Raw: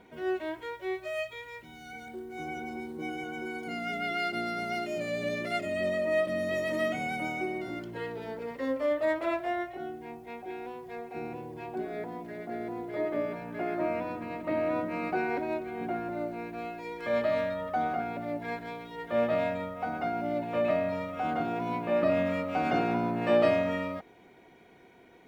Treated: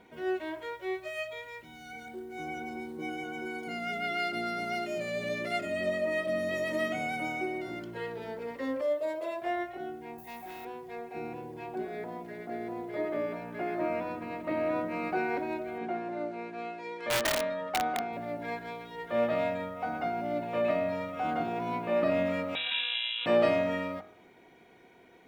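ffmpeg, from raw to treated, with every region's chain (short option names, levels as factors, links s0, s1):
-filter_complex "[0:a]asettb=1/sr,asplit=3[s0][s1][s2];[s0]atrim=end=8.814[s3];[s1]atrim=start=8.81:end=9.42,asetpts=PTS-STARTPTS,afade=t=in:d=0.004:c=qsin,afade=t=out:st=0.606:d=0.004:c=qsin,highpass=220,equalizer=f=1600:t=o:w=2:g=-12,aecho=1:1:1.9:0.59,atrim=end_sample=26901[s4];[s2]atrim=start=9.416[s5];[s3][s4]acrossfade=d=0.004:c1=hsin:c2=qsin[s6];[s6][s5]acrossfade=d=0.004:c1=qsin:c2=hsin,asettb=1/sr,asplit=3[s7][s8][s9];[s7]atrim=end=10.184[s10];[s8]atrim=start=10.18:end=10.65,asetpts=PTS-STARTPTS,afade=t=in:d=0.004:c=qsin,afade=t=out:st=0.466:d=0.004:c=qsin,aemphasis=mode=production:type=50fm,aecho=1:1:1.1:0.61,atrim=end_sample=20727,asoftclip=type=hard:threshold=0.0106[s11];[s9]atrim=start=10.646[s12];[s10][s11]acrossfade=d=0.004:c1=hsin:c2=qsin[s13];[s13][s12]acrossfade=d=0.004:c1=qsin:c2=hsin,asettb=1/sr,asplit=3[s14][s15][s16];[s14]atrim=end=15.784[s17];[s15]atrim=start=15.78:end=18.13,asetpts=PTS-STARTPTS,afade=t=in:d=0.004:c=qsin,afade=t=out:st=2.346:d=0.004:c=qsin,highpass=170,lowpass=6600,aeval=exprs='(mod(12.6*val(0)+1,2)-1)/12.6':c=same[s18];[s16]atrim=start=18.126[s19];[s17][s18]acrossfade=d=0.004:c1=hsin:c2=qsin[s20];[s20][s19]acrossfade=d=0.004:c1=qsin:c2=hsin,asettb=1/sr,asplit=3[s21][s22][s23];[s21]atrim=end=22.554[s24];[s22]atrim=start=22.55:end=23.26,asetpts=PTS-STARTPTS,afade=t=in:d=0.004:c=qsin,afade=t=out:st=0.706:d=0.004:c=qsin,equalizer=f=790:w=1.9:g=-5,aeval=exprs='val(0)*sin(2*PI*920*n/s)':c=same,lowpass=f=3400:t=q:w=0.5098,lowpass=f=3400:t=q:w=0.6013,lowpass=f=3400:t=q:w=0.9,lowpass=f=3400:t=q:w=2.563,afreqshift=-4000[s25];[s23]atrim=start=23.256[s26];[s24][s25]acrossfade=d=0.004:c1=hsin:c2=qsin[s27];[s27][s26]acrossfade=d=0.004:c1=qsin:c2=hsin,lowshelf=f=160:g=-3.5,bandreject=f=48.42:t=h:w=4,bandreject=f=96.84:t=h:w=4,bandreject=f=145.26:t=h:w=4,bandreject=f=193.68:t=h:w=4,bandreject=f=242.1:t=h:w=4,bandreject=f=290.52:t=h:w=4,bandreject=f=338.94:t=h:w=4,bandreject=f=387.36:t=h:w=4,bandreject=f=435.78:t=h:w=4,bandreject=f=484.2:t=h:w=4,bandreject=f=532.62:t=h:w=4,bandreject=f=581.04:t=h:w=4,bandreject=f=629.46:t=h:w=4,bandreject=f=677.88:t=h:w=4,bandreject=f=726.3:t=h:w=4,bandreject=f=774.72:t=h:w=4,bandreject=f=823.14:t=h:w=4,bandreject=f=871.56:t=h:w=4,bandreject=f=919.98:t=h:w=4,bandreject=f=968.4:t=h:w=4,bandreject=f=1016.82:t=h:w=4,bandreject=f=1065.24:t=h:w=4,bandreject=f=1113.66:t=h:w=4,bandreject=f=1162.08:t=h:w=4,bandreject=f=1210.5:t=h:w=4,bandreject=f=1258.92:t=h:w=4,bandreject=f=1307.34:t=h:w=4,bandreject=f=1355.76:t=h:w=4,bandreject=f=1404.18:t=h:w=4,bandreject=f=1452.6:t=h:w=4,bandreject=f=1501.02:t=h:w=4,bandreject=f=1549.44:t=h:w=4,bandreject=f=1597.86:t=h:w=4,bandreject=f=1646.28:t=h:w=4,bandreject=f=1694.7:t=h:w=4"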